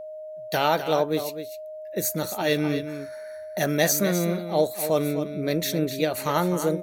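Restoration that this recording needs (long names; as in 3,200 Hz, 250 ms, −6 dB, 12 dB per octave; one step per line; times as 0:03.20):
notch filter 620 Hz, Q 30
echo removal 254 ms −10 dB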